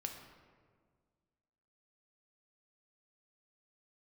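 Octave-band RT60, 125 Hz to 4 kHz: 2.1, 2.1, 1.9, 1.6, 1.3, 0.90 seconds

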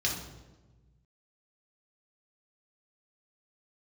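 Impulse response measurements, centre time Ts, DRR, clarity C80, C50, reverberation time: 39 ms, −2.5 dB, 7.5 dB, 4.0 dB, 1.2 s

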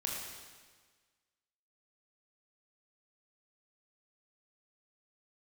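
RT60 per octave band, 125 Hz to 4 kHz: 1.6, 1.5, 1.5, 1.5, 1.5, 1.5 seconds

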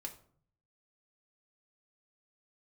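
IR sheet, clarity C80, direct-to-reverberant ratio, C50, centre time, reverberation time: 16.5 dB, 1.0 dB, 12.5 dB, 12 ms, 0.55 s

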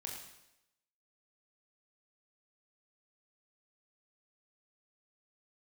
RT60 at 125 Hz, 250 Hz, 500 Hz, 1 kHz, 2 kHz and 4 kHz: 0.85, 0.85, 0.90, 0.85, 0.85, 0.85 seconds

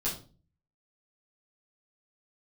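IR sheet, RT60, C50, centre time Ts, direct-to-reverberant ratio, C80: 0.40 s, 8.0 dB, 28 ms, −9.0 dB, 13.0 dB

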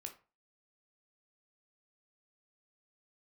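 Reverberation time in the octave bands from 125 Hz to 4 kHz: 0.40, 0.30, 0.35, 0.35, 0.30, 0.25 seconds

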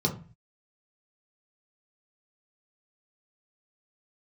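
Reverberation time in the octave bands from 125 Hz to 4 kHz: 0.60, 0.50, 0.35, 0.35, 0.40, 0.25 seconds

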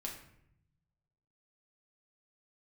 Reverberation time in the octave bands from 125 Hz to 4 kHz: 1.6, 1.2, 0.80, 0.70, 0.70, 0.50 seconds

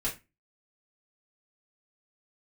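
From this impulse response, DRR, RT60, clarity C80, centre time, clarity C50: −7.0 dB, 0.25 s, 19.0 dB, 17 ms, 12.0 dB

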